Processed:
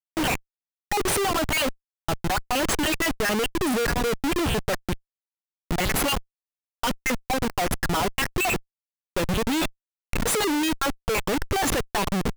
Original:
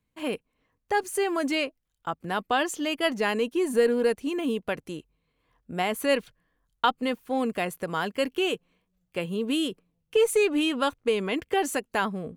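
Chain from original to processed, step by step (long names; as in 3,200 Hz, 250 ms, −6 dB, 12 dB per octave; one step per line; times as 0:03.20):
time-frequency cells dropped at random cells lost 53%
comparator with hysteresis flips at −40 dBFS
level +8 dB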